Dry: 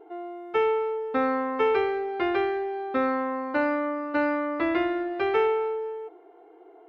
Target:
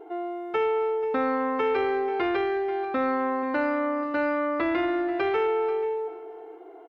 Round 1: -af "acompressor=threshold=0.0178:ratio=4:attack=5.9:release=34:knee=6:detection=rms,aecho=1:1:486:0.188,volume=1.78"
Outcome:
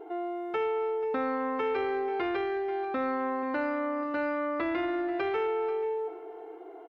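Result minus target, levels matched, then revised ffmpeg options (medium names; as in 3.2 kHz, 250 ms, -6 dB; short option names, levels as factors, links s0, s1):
compression: peak gain reduction +5 dB
-af "acompressor=threshold=0.0376:ratio=4:attack=5.9:release=34:knee=6:detection=rms,aecho=1:1:486:0.188,volume=1.78"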